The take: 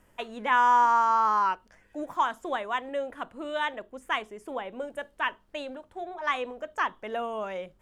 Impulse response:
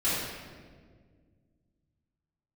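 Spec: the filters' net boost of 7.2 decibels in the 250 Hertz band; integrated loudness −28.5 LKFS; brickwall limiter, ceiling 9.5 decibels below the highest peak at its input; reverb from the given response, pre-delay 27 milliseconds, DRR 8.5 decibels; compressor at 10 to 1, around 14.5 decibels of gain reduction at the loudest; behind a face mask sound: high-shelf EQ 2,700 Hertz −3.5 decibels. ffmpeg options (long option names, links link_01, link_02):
-filter_complex "[0:a]equalizer=frequency=250:width_type=o:gain=8.5,acompressor=threshold=-32dB:ratio=10,alimiter=level_in=7.5dB:limit=-24dB:level=0:latency=1,volume=-7.5dB,asplit=2[link_01][link_02];[1:a]atrim=start_sample=2205,adelay=27[link_03];[link_02][link_03]afir=irnorm=-1:irlink=0,volume=-19.5dB[link_04];[link_01][link_04]amix=inputs=2:normalize=0,highshelf=frequency=2700:gain=-3.5,volume=12dB"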